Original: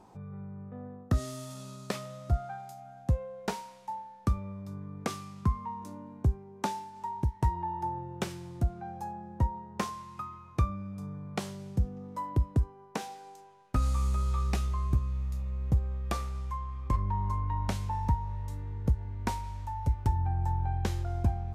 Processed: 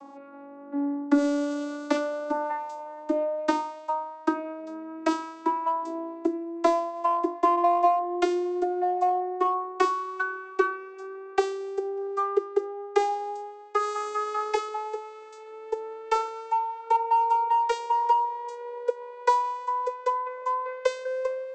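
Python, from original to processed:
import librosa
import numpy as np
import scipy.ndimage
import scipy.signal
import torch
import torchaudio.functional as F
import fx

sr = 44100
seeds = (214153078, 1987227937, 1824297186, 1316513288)

p1 = fx.vocoder_glide(x, sr, note=61, semitones=11)
p2 = scipy.signal.sosfilt(scipy.signal.butter(2, 250.0, 'highpass', fs=sr, output='sos'), p1)
p3 = fx.hum_notches(p2, sr, base_hz=50, count=7)
p4 = np.clip(10.0 ** (33.5 / 20.0) * p3, -1.0, 1.0) / 10.0 ** (33.5 / 20.0)
p5 = p3 + (p4 * 10.0 ** (-10.0 / 20.0))
y = p5 * 10.0 ** (9.0 / 20.0)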